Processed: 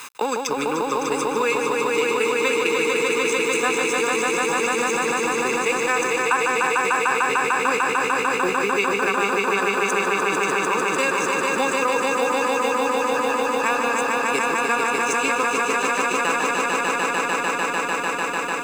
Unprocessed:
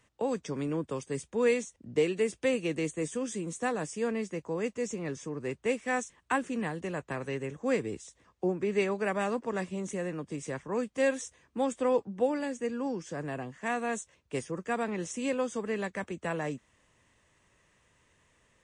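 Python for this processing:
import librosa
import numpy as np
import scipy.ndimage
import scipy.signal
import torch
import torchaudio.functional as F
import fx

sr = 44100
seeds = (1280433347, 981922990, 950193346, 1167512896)

p1 = fx.law_mismatch(x, sr, coded='A')
p2 = scipy.signal.sosfilt(scipy.signal.butter(2, 590.0, 'highpass', fs=sr, output='sos'), p1)
p3 = p2 + 0.77 * np.pad(p2, (int(0.8 * sr / 1000.0), 0))[:len(p2)]
p4 = fx.transient(p3, sr, attack_db=9, sustain_db=-9)
p5 = p4 + fx.echo_swell(p4, sr, ms=149, loudest=5, wet_db=-5.5, dry=0)
y = fx.env_flatten(p5, sr, amount_pct=70)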